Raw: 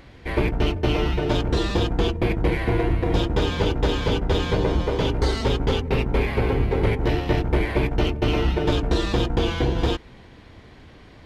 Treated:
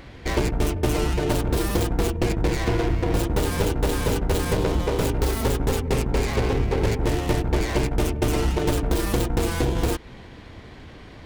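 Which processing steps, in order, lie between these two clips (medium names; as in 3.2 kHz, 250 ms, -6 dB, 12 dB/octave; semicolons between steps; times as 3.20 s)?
tracing distortion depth 0.47 ms; compression 2:1, threshold -26 dBFS, peak gain reduction 6 dB; trim +4 dB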